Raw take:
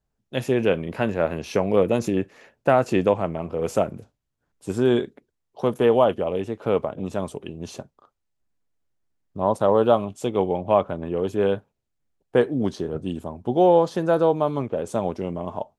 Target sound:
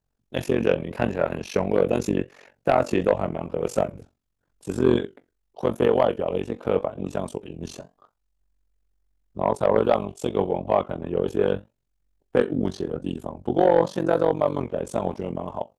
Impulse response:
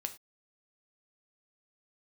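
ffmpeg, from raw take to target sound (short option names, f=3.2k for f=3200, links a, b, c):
-af "flanger=delay=6.7:depth=6.3:regen=73:speed=0.84:shape=triangular,tremolo=f=46:d=0.947,aeval=exprs='0.376*sin(PI/2*1.58*val(0)/0.376)':c=same"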